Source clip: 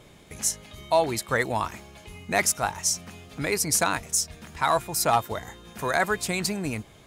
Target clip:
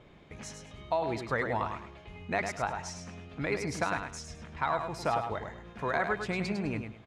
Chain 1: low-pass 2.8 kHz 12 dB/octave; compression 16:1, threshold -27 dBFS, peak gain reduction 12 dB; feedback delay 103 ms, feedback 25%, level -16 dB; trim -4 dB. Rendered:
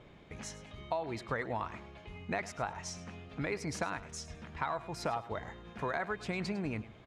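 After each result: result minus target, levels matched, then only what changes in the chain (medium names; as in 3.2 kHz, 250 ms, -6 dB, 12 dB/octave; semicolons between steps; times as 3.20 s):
echo-to-direct -9.5 dB; compression: peak gain reduction +5.5 dB
change: feedback delay 103 ms, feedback 25%, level -6.5 dB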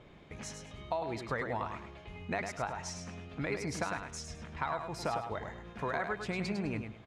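compression: peak gain reduction +5.5 dB
change: compression 16:1, threshold -21 dBFS, peak gain reduction 6 dB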